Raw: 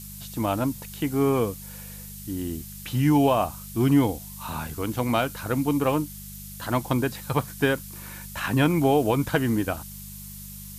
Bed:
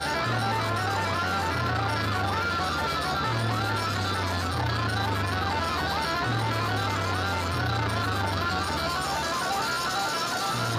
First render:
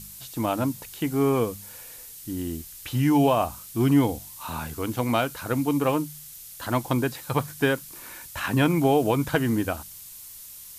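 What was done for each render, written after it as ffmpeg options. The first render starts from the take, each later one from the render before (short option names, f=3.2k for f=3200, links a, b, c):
-af "bandreject=f=50:t=h:w=4,bandreject=f=100:t=h:w=4,bandreject=f=150:t=h:w=4,bandreject=f=200:t=h:w=4"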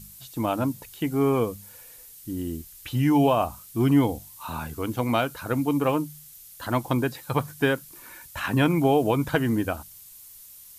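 -af "afftdn=nr=6:nf=-43"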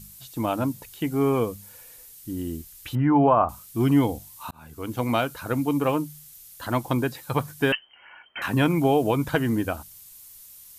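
-filter_complex "[0:a]asettb=1/sr,asplit=3[a][b][c];[a]atrim=end=2.954[d];[b]atrim=start=2.95:end=3.49,asetpts=PTS-STARTPTS,afade=t=in:d=0.004:c=qsin,afade=t=out:st=0.536:d=0.004:c=qsin,lowpass=f=1.3k:t=q:w=2.3[e];[c]atrim=start=3.486[f];[d][e]acrossfade=d=0.004:c1=hsin:c2=qsin[g];[g][f]acrossfade=d=0.004:c1=qsin:c2=hsin,asettb=1/sr,asplit=3[h][i][j];[h]atrim=end=7.724[k];[i]atrim=start=7.72:end=8.42,asetpts=PTS-STARTPTS,afade=t=in:d=0.004:c=qsin,afade=t=out:st=0.696:d=0.004:c=qsin,lowpass=f=2.7k:t=q:w=0.5098,lowpass=f=2.7k:t=q:w=0.6013,lowpass=f=2.7k:t=q:w=0.9,lowpass=f=2.7k:t=q:w=2.563,afreqshift=-3200[l];[j]atrim=start=8.416[m];[k][l]acrossfade=d=0.004:c1=hsin:c2=qsin[n];[n][m]acrossfade=d=0.004:c1=qsin:c2=hsin,asplit=2[o][p];[o]atrim=end=4.51,asetpts=PTS-STARTPTS,afade=t=out:st=4.506:d=0.004:c=hsin[q];[p]atrim=start=4.51,asetpts=PTS-STARTPTS,afade=t=in:d=0.51[r];[q][r]concat=n=2:v=0:a=1"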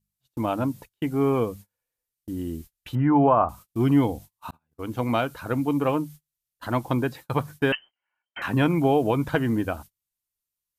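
-af "agate=range=-33dB:threshold=-39dB:ratio=16:detection=peak,highshelf=f=4.5k:g=-8.5"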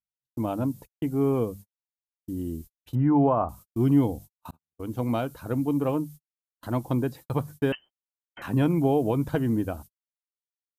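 -af "agate=range=-25dB:threshold=-42dB:ratio=16:detection=peak,equalizer=f=2k:t=o:w=2.7:g=-10"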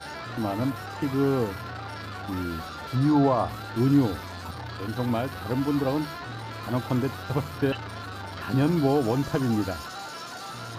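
-filter_complex "[1:a]volume=-10dB[a];[0:a][a]amix=inputs=2:normalize=0"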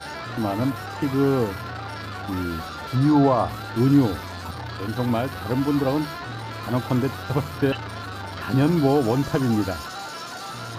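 -af "volume=3.5dB"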